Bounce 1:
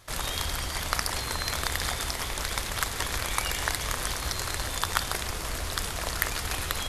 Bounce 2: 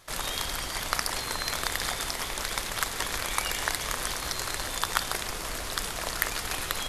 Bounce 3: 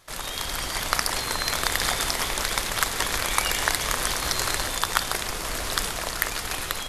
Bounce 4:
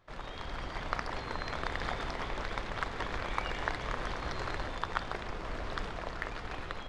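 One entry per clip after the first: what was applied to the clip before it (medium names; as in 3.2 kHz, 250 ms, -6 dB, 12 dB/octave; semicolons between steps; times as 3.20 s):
peaking EQ 72 Hz -10 dB 1.5 oct
level rider; trim -1 dB
tape spacing loss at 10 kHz 35 dB; trim -4.5 dB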